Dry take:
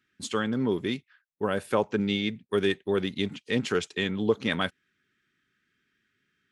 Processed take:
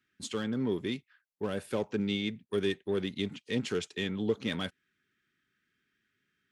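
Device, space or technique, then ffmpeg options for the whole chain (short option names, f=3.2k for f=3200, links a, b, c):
one-band saturation: -filter_complex "[0:a]acrossover=split=550|2300[a][b][c];[b]asoftclip=type=tanh:threshold=-37dB[d];[a][d][c]amix=inputs=3:normalize=0,volume=-4dB"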